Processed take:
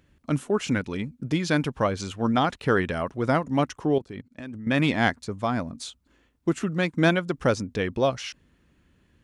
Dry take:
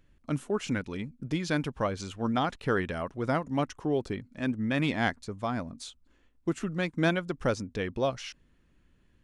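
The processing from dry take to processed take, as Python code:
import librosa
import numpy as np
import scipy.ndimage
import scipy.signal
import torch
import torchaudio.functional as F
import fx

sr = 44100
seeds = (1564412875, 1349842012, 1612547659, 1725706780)

y = scipy.signal.sosfilt(scipy.signal.butter(2, 53.0, 'highpass', fs=sr, output='sos'), x)
y = fx.level_steps(y, sr, step_db=21, at=(3.98, 4.67))
y = y * librosa.db_to_amplitude(5.5)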